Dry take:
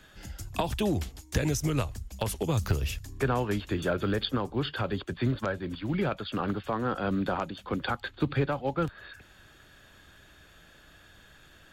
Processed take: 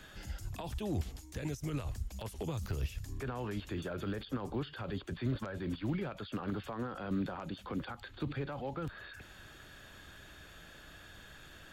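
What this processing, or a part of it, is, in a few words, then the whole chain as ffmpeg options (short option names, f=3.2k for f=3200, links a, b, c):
de-esser from a sidechain: -filter_complex "[0:a]asplit=2[a][b];[b]highpass=f=4.2k:p=1,apad=whole_len=516932[c];[a][c]sidechaincompress=threshold=-57dB:ratio=4:attack=4.3:release=34,volume=2dB"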